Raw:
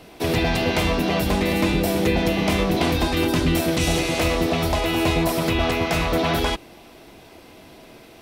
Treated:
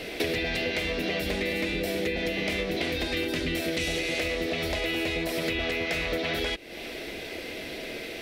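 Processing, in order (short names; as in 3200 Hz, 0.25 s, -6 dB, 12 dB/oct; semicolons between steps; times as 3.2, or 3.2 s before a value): graphic EQ 125/500/1000/2000/4000 Hz -5/+8/-11/+11/+5 dB; compressor 12:1, threshold -31 dBFS, peak gain reduction 19.5 dB; gain +5 dB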